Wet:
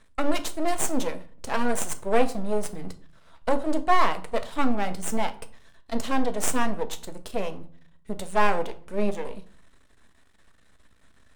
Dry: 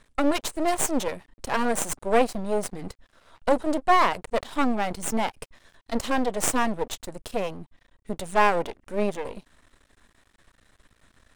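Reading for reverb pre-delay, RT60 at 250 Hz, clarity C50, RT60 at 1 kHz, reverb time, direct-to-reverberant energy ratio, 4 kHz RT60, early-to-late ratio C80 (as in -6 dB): 5 ms, 0.75 s, 16.0 dB, 0.45 s, 0.50 s, 8.0 dB, 0.35 s, 20.5 dB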